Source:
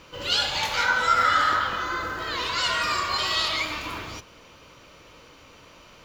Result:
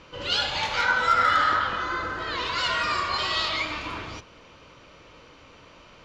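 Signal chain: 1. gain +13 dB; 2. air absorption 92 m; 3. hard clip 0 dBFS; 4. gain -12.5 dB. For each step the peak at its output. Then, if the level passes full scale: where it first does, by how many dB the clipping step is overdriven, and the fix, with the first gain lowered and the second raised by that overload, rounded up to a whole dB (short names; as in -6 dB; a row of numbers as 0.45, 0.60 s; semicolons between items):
+4.0, +3.5, 0.0, -12.5 dBFS; step 1, 3.5 dB; step 1 +9 dB, step 4 -8.5 dB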